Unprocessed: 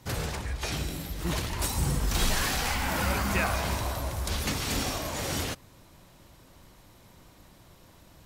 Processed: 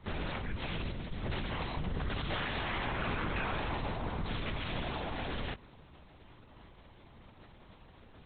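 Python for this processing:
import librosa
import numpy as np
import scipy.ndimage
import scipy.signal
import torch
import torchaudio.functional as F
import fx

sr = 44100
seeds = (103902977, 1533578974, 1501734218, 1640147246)

y = fx.over_compress(x, sr, threshold_db=-29.0, ratio=-1.0, at=(1.79, 2.31))
y = 10.0 ** (-30.0 / 20.0) * np.tanh(y / 10.0 ** (-30.0 / 20.0))
y = fx.lpc_vocoder(y, sr, seeds[0], excitation='whisper', order=8)
y = y * 10.0 ** (-1.0 / 20.0)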